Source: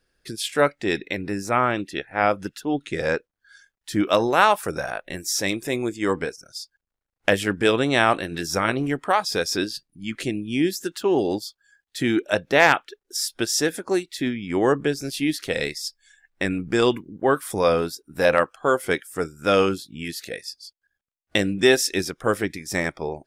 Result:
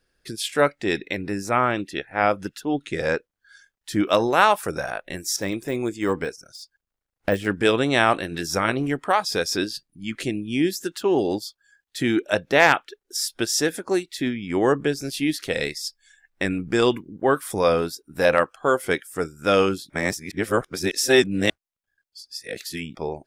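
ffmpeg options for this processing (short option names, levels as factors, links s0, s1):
-filter_complex "[0:a]asettb=1/sr,asplit=3[s0][s1][s2];[s0]atrim=end=5.364[s3];[s1]atrim=start=5.36:end=7.46,asetpts=PTS-STARTPTS,afade=t=in:d=0.004:c=qsin,afade=t=out:st=2.096:d=0.004:c=qsin,deesser=0.85[s4];[s2]atrim=start=7.456[s5];[s3][s4]acrossfade=d=0.004:c1=hsin:c2=qsin[s6];[s6][s5]acrossfade=d=0.004:c1=qsin:c2=hsin,asplit=3[s7][s8][s9];[s7]atrim=end=19.902[s10];[s8]atrim=start=19.898:end=22.952,asetpts=PTS-STARTPTS,areverse[s11];[s9]atrim=start=22.948[s12];[s10][s11]acrossfade=d=0.004:c1=hsin:c2=hsin[s13];[s13][s12]acrossfade=d=0.004:c1=hsin:c2=hsin"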